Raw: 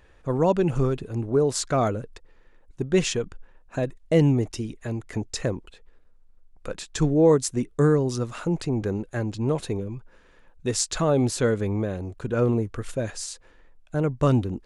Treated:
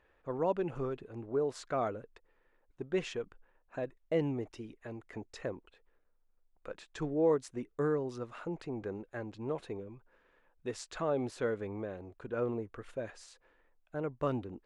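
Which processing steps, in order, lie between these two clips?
tone controls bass -10 dB, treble -15 dB; gain -9 dB

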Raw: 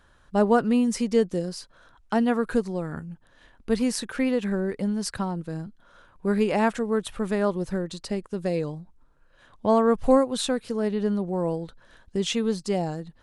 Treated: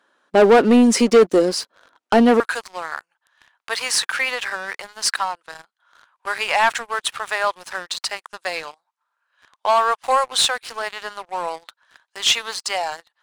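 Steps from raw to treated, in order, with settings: HPF 270 Hz 24 dB/oct, from 2.4 s 890 Hz; dynamic EQ 1200 Hz, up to -4 dB, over -42 dBFS, Q 1.4; sample leveller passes 3; high shelf 7700 Hz -7.5 dB; gain +5 dB

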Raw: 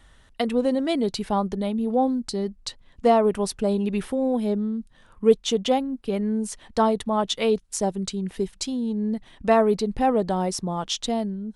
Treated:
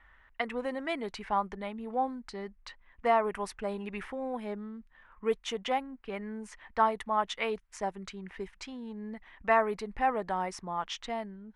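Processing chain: low-pass opened by the level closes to 2900 Hz, open at -17.5 dBFS; graphic EQ 125/250/500/1000/2000/4000/8000 Hz -10/-5/-4/+6/+11/-7/-4 dB; gain -8 dB

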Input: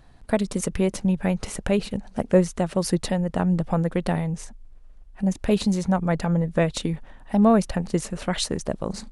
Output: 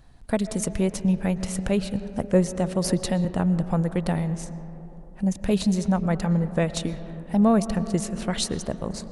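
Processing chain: tone controls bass +3 dB, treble +4 dB; reverb RT60 3.6 s, pre-delay 80 ms, DRR 12.5 dB; 2.84–3.25 three-band squash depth 70%; gain -3 dB

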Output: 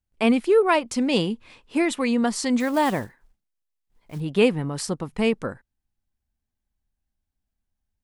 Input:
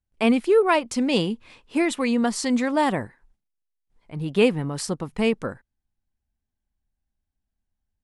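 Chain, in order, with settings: 2.6–4.21 block floating point 5-bit

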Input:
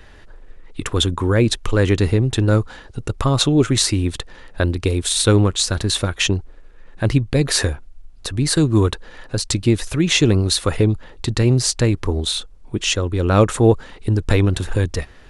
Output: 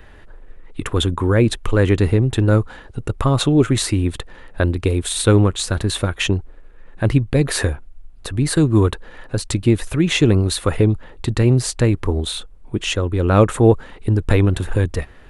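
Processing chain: bell 5400 Hz -9 dB 1.2 oct; gain +1 dB

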